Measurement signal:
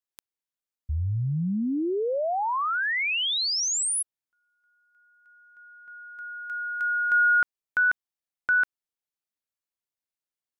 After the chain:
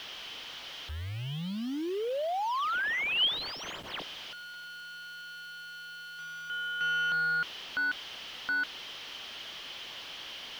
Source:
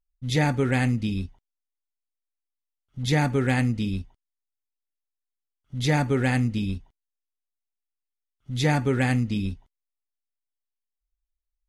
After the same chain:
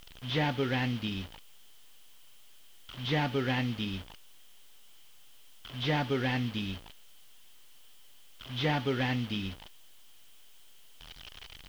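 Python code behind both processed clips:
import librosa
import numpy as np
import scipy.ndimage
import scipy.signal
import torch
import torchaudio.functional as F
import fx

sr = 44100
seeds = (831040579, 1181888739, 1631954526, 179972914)

p1 = fx.delta_mod(x, sr, bps=32000, step_db=-35.0)
p2 = scipy.signal.sosfilt(scipy.signal.butter(2, 4900.0, 'lowpass', fs=sr, output='sos'), p1)
p3 = fx.low_shelf(p2, sr, hz=260.0, db=-7.5)
p4 = fx.quant_dither(p3, sr, seeds[0], bits=8, dither='triangular')
p5 = p3 + F.gain(torch.from_numpy(p4), -7.5).numpy()
p6 = fx.peak_eq(p5, sr, hz=3100.0, db=12.5, octaves=0.3)
y = F.gain(torch.from_numpy(p6), -7.0).numpy()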